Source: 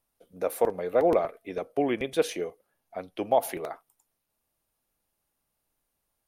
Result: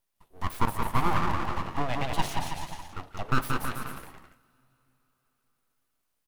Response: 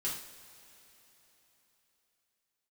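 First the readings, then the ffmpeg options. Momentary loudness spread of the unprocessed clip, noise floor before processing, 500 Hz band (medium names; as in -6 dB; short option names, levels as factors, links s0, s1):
15 LU, -80 dBFS, -13.0 dB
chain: -filter_complex "[0:a]aecho=1:1:180|324|439.2|531.4|605.1:0.631|0.398|0.251|0.158|0.1,aeval=exprs='abs(val(0))':c=same,asplit=2[s0][s1];[1:a]atrim=start_sample=2205[s2];[s1][s2]afir=irnorm=-1:irlink=0,volume=0.141[s3];[s0][s3]amix=inputs=2:normalize=0,volume=0.891"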